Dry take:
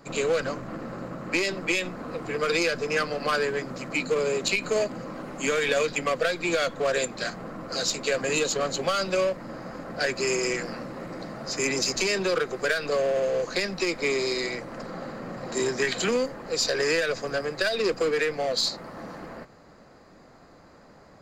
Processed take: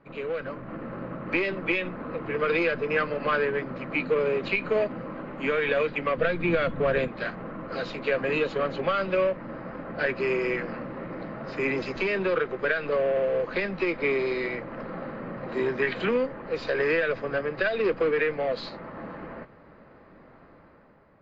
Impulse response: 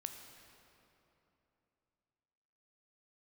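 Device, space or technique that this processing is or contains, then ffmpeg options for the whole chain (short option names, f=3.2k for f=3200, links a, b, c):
action camera in a waterproof case: -filter_complex "[0:a]bandreject=f=730:w=12,asettb=1/sr,asplit=3[a][b][c];[a]atrim=end=6.174[d];[b]atrim=start=6.17:end=7.08,asetpts=PTS-STARTPTS,afade=t=in:d=0.004:c=qsin,afade=t=out:st=0.906:d=0.004:c=qsin,bass=f=250:g=11,treble=f=4k:g=-2[e];[c]atrim=start=7.076[f];[d][e]acrossfade=d=0.004:c1=hsin:c2=qsin[g];[g][f]acrossfade=d=0.004:c1=qsin:c2=hsin,lowpass=f=2.8k:w=0.5412,lowpass=f=2.8k:w=1.3066,dynaudnorm=f=100:g=13:m=8dB,volume=-7dB" -ar 24000 -c:a aac -b:a 48k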